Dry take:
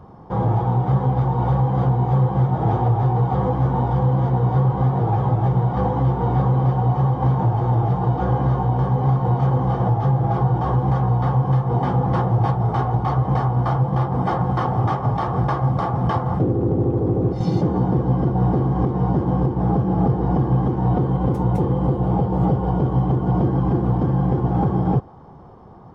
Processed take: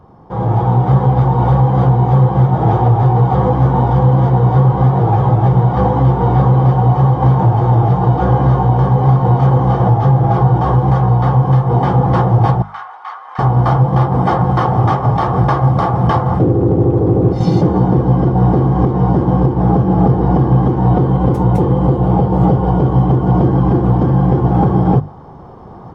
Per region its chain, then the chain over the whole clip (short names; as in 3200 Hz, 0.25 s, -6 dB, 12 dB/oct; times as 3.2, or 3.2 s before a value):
12.62–13.39 HPF 1300 Hz 24 dB/oct + tilt -4.5 dB/oct
whole clip: notches 50/100/150/200/250 Hz; AGC